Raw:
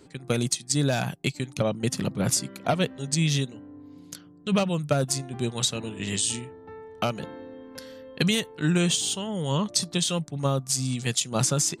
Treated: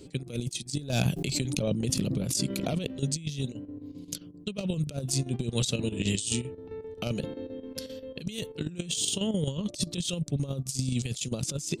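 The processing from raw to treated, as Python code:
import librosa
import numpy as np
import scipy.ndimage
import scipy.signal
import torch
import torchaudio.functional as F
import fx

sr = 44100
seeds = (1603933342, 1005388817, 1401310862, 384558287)

y = fx.chopper(x, sr, hz=7.6, depth_pct=65, duty_pct=75)
y = fx.band_shelf(y, sr, hz=1200.0, db=-11.5, octaves=1.7)
y = fx.over_compress(y, sr, threshold_db=-30.0, ratio=-0.5)
y = fx.low_shelf(y, sr, hz=89.0, db=5.5)
y = fx.pre_swell(y, sr, db_per_s=23.0, at=(0.93, 2.98))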